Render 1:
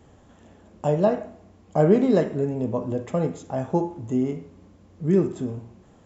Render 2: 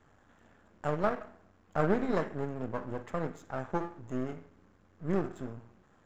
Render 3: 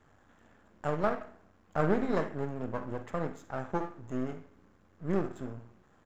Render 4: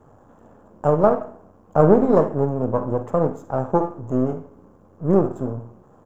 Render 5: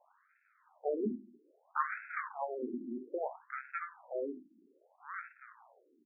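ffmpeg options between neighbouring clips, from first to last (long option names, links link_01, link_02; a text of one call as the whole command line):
ffmpeg -i in.wav -af "aeval=exprs='if(lt(val(0),0),0.251*val(0),val(0))':channel_layout=same,equalizer=frequency=1500:width_type=o:width=1.1:gain=11,volume=-9dB" out.wav
ffmpeg -i in.wav -af "aecho=1:1:51|70:0.15|0.126" out.wav
ffmpeg -i in.wav -af "equalizer=frequency=125:width_type=o:width=1:gain=7,equalizer=frequency=250:width_type=o:width=1:gain=3,equalizer=frequency=500:width_type=o:width=1:gain=8,equalizer=frequency=1000:width_type=o:width=1:gain=7,equalizer=frequency=2000:width_type=o:width=1:gain=-12,equalizer=frequency=4000:width_type=o:width=1:gain=-10,volume=7dB" out.wav
ffmpeg -i in.wav -af "aeval=exprs='abs(val(0))':channel_layout=same,afftfilt=real='re*between(b*sr/1024,250*pow(1900/250,0.5+0.5*sin(2*PI*0.61*pts/sr))/1.41,250*pow(1900/250,0.5+0.5*sin(2*PI*0.61*pts/sr))*1.41)':imag='im*between(b*sr/1024,250*pow(1900/250,0.5+0.5*sin(2*PI*0.61*pts/sr))/1.41,250*pow(1900/250,0.5+0.5*sin(2*PI*0.61*pts/sr))*1.41)':win_size=1024:overlap=0.75,volume=-8dB" out.wav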